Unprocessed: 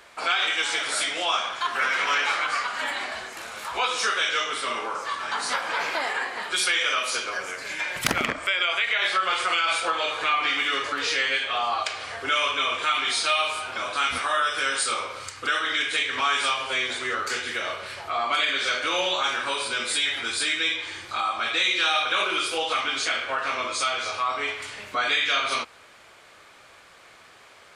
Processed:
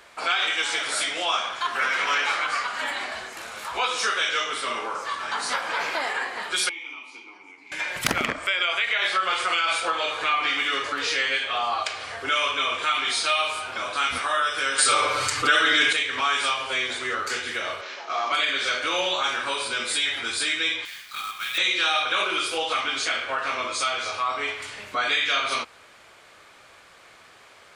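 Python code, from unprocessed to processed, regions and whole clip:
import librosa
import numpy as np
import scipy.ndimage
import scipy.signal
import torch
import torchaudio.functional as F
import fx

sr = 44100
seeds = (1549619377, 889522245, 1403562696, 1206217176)

y = fx.chain(x, sr, fx.vowel_filter(vowel='u'),
    fx.peak_eq(hz=12000.0, db=6.5, octaves=2.3), at=(6.69, 7.72))
y = fx.chain(y, sr, fx.comb(ms=6.8, depth=0.98),
    fx.env_flatten(amount_pct=50), at=(14.78, 15.93))
y = fx.chain(y, sr, fx.cvsd(bps=32000),
    fx.highpass(hz=270.0, slope=24),
    fx.notch(hz=4500.0, q=17.0), at=(17.81, 18.32))
y = fx.chain(y, sr, fx.median_filter(points=5),
    fx.bessel_highpass(hz=1900.0, order=6),
    fx.quant_companded(bits=4), at=(20.85, 21.58))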